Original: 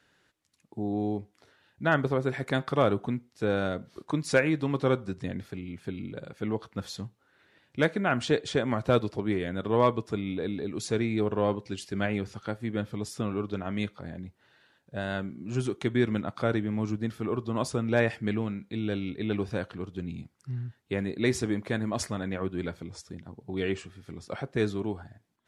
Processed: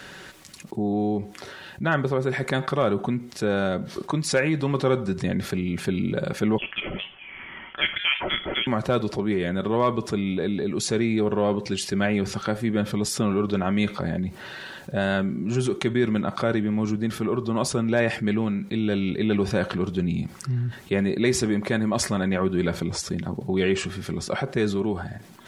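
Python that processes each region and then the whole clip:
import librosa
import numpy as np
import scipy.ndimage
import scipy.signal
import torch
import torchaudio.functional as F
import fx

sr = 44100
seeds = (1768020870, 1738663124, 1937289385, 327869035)

y = fx.chain(x, sr, fx.highpass(hz=600.0, slope=24),
    fx.freq_invert(carrier_hz=3800), at=(6.58, 8.67))
y = fx.rider(y, sr, range_db=10, speed_s=2.0)
y = y + 0.34 * np.pad(y, (int(5.3 * sr / 1000.0), 0))[:len(y)]
y = fx.env_flatten(y, sr, amount_pct=50)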